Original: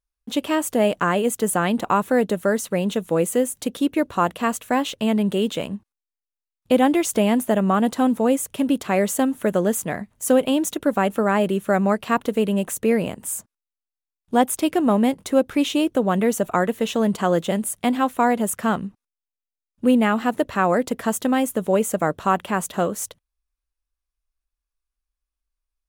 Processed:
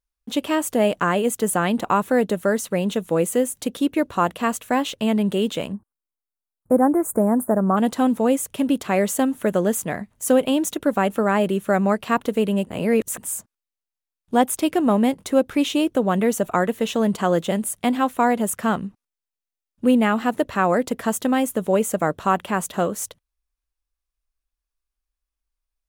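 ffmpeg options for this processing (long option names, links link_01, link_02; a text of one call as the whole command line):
ffmpeg -i in.wav -filter_complex "[0:a]asplit=3[link_01][link_02][link_03];[link_01]afade=type=out:start_time=5.72:duration=0.02[link_04];[link_02]asuperstop=centerf=3700:order=8:qfactor=0.54,afade=type=in:start_time=5.72:duration=0.02,afade=type=out:start_time=7.76:duration=0.02[link_05];[link_03]afade=type=in:start_time=7.76:duration=0.02[link_06];[link_04][link_05][link_06]amix=inputs=3:normalize=0,asplit=3[link_07][link_08][link_09];[link_07]atrim=end=12.672[link_10];[link_08]atrim=start=12.668:end=13.182,asetpts=PTS-STARTPTS,areverse[link_11];[link_09]atrim=start=13.178[link_12];[link_10][link_11]acrossfade=duration=0.004:curve1=hsin:curve2=hsin[link_13];[link_13][link_12]acrossfade=duration=0.004:curve1=hsin:curve2=hsin" out.wav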